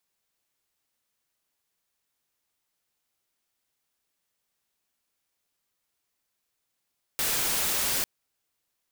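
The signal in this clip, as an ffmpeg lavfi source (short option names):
-f lavfi -i "anoisesrc=c=white:a=0.0774:d=0.85:r=44100:seed=1"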